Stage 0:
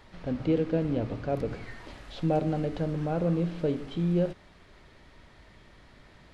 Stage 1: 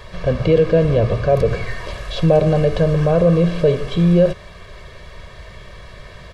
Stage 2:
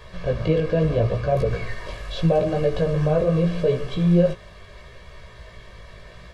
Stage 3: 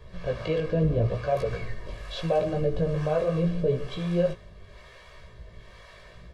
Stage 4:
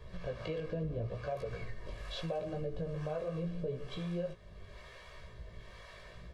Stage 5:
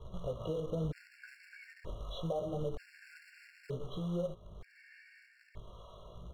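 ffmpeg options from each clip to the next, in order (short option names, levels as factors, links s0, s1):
-filter_complex "[0:a]aecho=1:1:1.8:0.84,asplit=2[s0][s1];[s1]alimiter=limit=0.0794:level=0:latency=1:release=23,volume=1.26[s2];[s0][s2]amix=inputs=2:normalize=0,volume=2.11"
-af "flanger=delay=15.5:depth=4.4:speed=0.77,volume=0.75"
-filter_complex "[0:a]acrossover=split=480[s0][s1];[s0]aeval=exprs='val(0)*(1-0.7/2+0.7/2*cos(2*PI*1.1*n/s))':c=same[s2];[s1]aeval=exprs='val(0)*(1-0.7/2-0.7/2*cos(2*PI*1.1*n/s))':c=same[s3];[s2][s3]amix=inputs=2:normalize=0,volume=0.841"
-af "acompressor=threshold=0.0158:ratio=2.5,volume=0.708"
-af "acrusher=bits=3:mode=log:mix=0:aa=0.000001,aemphasis=mode=reproduction:type=75kf,afftfilt=real='re*gt(sin(2*PI*0.54*pts/sr)*(1-2*mod(floor(b*sr/1024/1400),2)),0)':imag='im*gt(sin(2*PI*0.54*pts/sr)*(1-2*mod(floor(b*sr/1024/1400),2)),0)':win_size=1024:overlap=0.75,volume=1.19"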